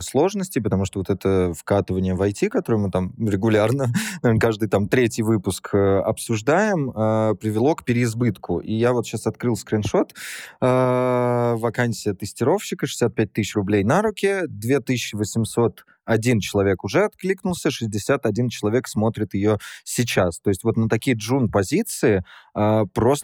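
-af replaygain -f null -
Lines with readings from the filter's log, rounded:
track_gain = +1.8 dB
track_peak = 0.284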